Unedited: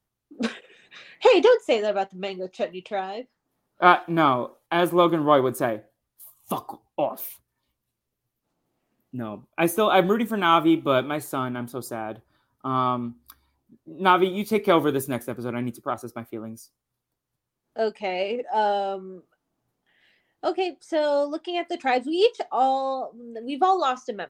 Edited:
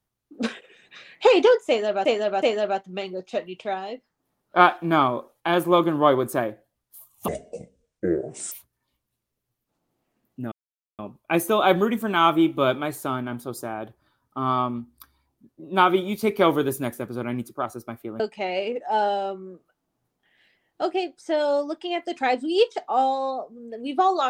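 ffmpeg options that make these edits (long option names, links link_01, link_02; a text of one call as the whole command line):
ffmpeg -i in.wav -filter_complex "[0:a]asplit=7[link_01][link_02][link_03][link_04][link_05][link_06][link_07];[link_01]atrim=end=2.052[link_08];[link_02]atrim=start=1.678:end=2.052[link_09];[link_03]atrim=start=1.678:end=6.544[link_10];[link_04]atrim=start=6.54:end=7.27,asetpts=PTS-STARTPTS,asetrate=26019,aresample=44100,atrim=end_sample=54564,asetpts=PTS-STARTPTS[link_11];[link_05]atrim=start=7.266:end=9.27,asetpts=PTS-STARTPTS,afade=type=out:start_time=2:duration=0.004:curve=hsin,apad=pad_dur=0.47[link_12];[link_06]atrim=start=9.27:end=16.482,asetpts=PTS-STARTPTS,afade=type=in:duration=0.004:curve=hsin[link_13];[link_07]atrim=start=17.828[link_14];[link_08][link_09]acrossfade=duration=0.004:curve1=hsin:curve2=hsin[link_15];[link_15][link_10]acrossfade=duration=0.004:curve1=hsin:curve2=hsin[link_16];[link_16][link_11]acrossfade=duration=0.004:curve1=hsin:curve2=hsin[link_17];[link_12][link_13]concat=n=2:v=0:a=1[link_18];[link_17][link_18]acrossfade=duration=0.004:curve1=hsin:curve2=hsin[link_19];[link_19][link_14]acrossfade=duration=0.004:curve1=hsin:curve2=hsin" out.wav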